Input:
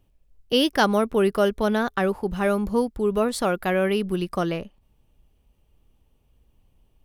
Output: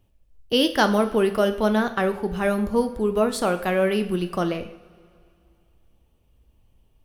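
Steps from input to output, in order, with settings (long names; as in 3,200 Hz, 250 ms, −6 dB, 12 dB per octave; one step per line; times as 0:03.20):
coupled-rooms reverb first 0.59 s, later 2.6 s, from −18 dB, DRR 7.5 dB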